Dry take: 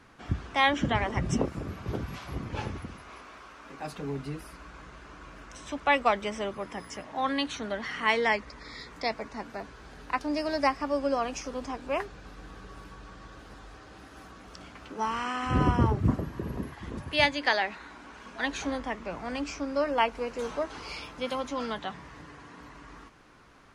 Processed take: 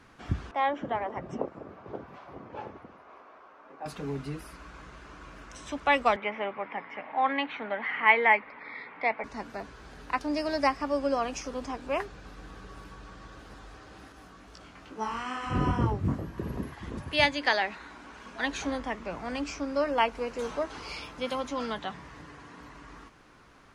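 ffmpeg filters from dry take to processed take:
ffmpeg -i in.wav -filter_complex "[0:a]asettb=1/sr,asplit=3[link_01][link_02][link_03];[link_01]atrim=end=0.514[link_04];[link_02]atrim=start=0.51:end=3.86,asetpts=PTS-STARTPTS,afade=type=in:duration=0.004:curve=qsin,afade=type=out:start_time=3.346:duration=0.004:curve=qsin,bandpass=frequency=660:width_type=q:width=1.1[link_05];[link_03]atrim=start=3.856[link_06];[link_04][link_05]acrossfade=duration=0.004:curve1=hsin:curve2=qsin[link_07];[link_07][link_06]acrossfade=duration=0.004:curve1=qsin:curve2=hsin,asettb=1/sr,asplit=3[link_08][link_09][link_10];[link_08]atrim=end=6.164[link_11];[link_09]atrim=start=6.16:end=9.24,asetpts=PTS-STARTPTS,afade=type=in:duration=0.004:curve=qsin,afade=type=out:start_time=3.076:duration=0.004:curve=qsin,highpass=260,equalizer=frequency=350:width_type=q:width=4:gain=-5,equalizer=frequency=840:width_type=q:width=4:gain=7,equalizer=frequency=2200:width_type=q:width=4:gain=9,lowpass=frequency=2800:width=0.5412,lowpass=frequency=2800:width=1.3066[link_12];[link_10]atrim=start=9.236[link_13];[link_11][link_12]acrossfade=duration=0.004:curve1=hsin:curve2=qsin[link_14];[link_14][link_13]acrossfade=duration=0.004:curve1=qsin:curve2=hsin,asettb=1/sr,asplit=3[link_15][link_16][link_17];[link_15]atrim=end=14.124[link_18];[link_16]atrim=start=14.12:end=16.38,asetpts=PTS-STARTPTS,afade=type=in:duration=0.004:curve=qsin,afade=type=out:start_time=2.256:duration=0.004:curve=qsin,flanger=delay=18:depth=4.3:speed=2.3[link_19];[link_17]atrim=start=16.376[link_20];[link_18][link_19]acrossfade=duration=0.004:curve1=hsin:curve2=qsin[link_21];[link_21][link_20]acrossfade=duration=0.004:curve1=qsin:curve2=hsin" out.wav

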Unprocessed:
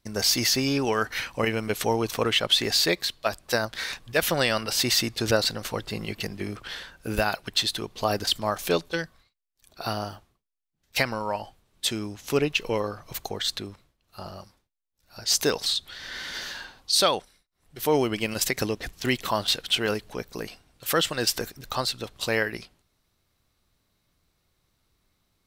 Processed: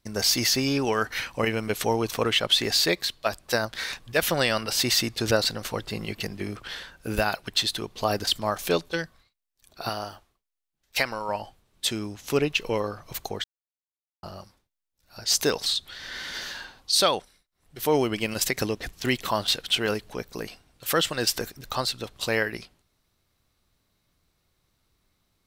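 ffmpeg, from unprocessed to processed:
ffmpeg -i in.wav -filter_complex "[0:a]asettb=1/sr,asplit=3[link_01][link_02][link_03];[link_01]atrim=end=9.894[link_04];[link_02]atrim=start=9.89:end=11.29,asetpts=PTS-STARTPTS,afade=type=in:duration=0.004:curve=qsin,afade=type=out:start_time=1.396:duration=0.004:curve=qsin,equalizer=frequency=140:width=0.57:gain=-8.5[link_05];[link_03]atrim=start=11.286[link_06];[link_04][link_05]acrossfade=duration=0.004:curve1=hsin:curve2=qsin[link_07];[link_07][link_06]acrossfade=duration=0.004:curve1=qsin:curve2=hsin,asplit=3[link_08][link_09][link_10];[link_08]atrim=end=13.44,asetpts=PTS-STARTPTS,afade=type=out:start_time=13.436:duration=0.004:curve=hsin[link_11];[link_09]atrim=start=13.44:end=14.23,asetpts=PTS-STARTPTS,volume=0[link_12];[link_10]atrim=start=14.23,asetpts=PTS-STARTPTS,afade=type=in:duration=0.004:curve=hsin[link_13];[link_11][link_12][link_13]concat=n=3:v=0:a=1" out.wav

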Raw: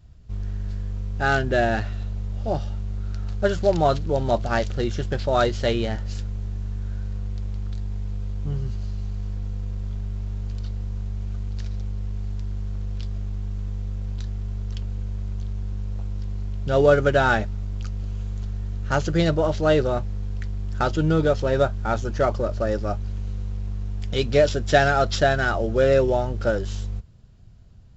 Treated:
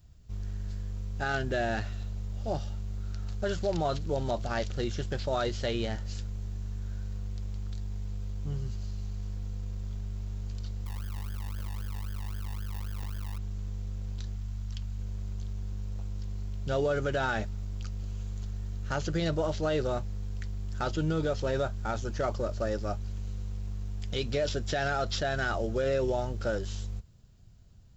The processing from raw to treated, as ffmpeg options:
ffmpeg -i in.wav -filter_complex "[0:a]asettb=1/sr,asplit=3[link_01][link_02][link_03];[link_01]atrim=end=10.864[link_04];[link_02]atrim=start=10.86:end=13.38,asetpts=PTS-STARTPTS,afade=type=in:duration=0.004:curve=qsin,afade=type=out:start_time=2.516:duration=0.004:curve=qsin,acrusher=samples=38:mix=1:aa=0.000001:lfo=1:lforange=22.8:lforate=3.8[link_05];[link_03]atrim=start=13.376[link_06];[link_04][link_05]acrossfade=duration=0.004:curve1=hsin:curve2=qsin[link_07];[link_07][link_06]acrossfade=duration=0.004:curve1=qsin:curve2=hsin,asettb=1/sr,asplit=3[link_08][link_09][link_10];[link_08]atrim=end=14.354[link_11];[link_09]atrim=start=14.35:end=15,asetpts=PTS-STARTPTS,afade=type=in:duration=0.004:curve=qsin,afade=type=out:start_time=0.646:duration=0.004:curve=qsin,equalizer=frequency=440:width=1.5:gain=-10[link_12];[link_10]atrim=start=14.996[link_13];[link_11][link_12]acrossfade=duration=0.004:curve1=hsin:curve2=qsin[link_14];[link_14][link_13]acrossfade=duration=0.004:curve1=qsin:curve2=hsin,acrossover=split=5800[link_15][link_16];[link_16]acompressor=threshold=-54dB:ratio=4:attack=1:release=60[link_17];[link_15][link_17]amix=inputs=2:normalize=0,aemphasis=mode=production:type=50fm,alimiter=limit=-14dB:level=0:latency=1:release=37,volume=-6.5dB" out.wav

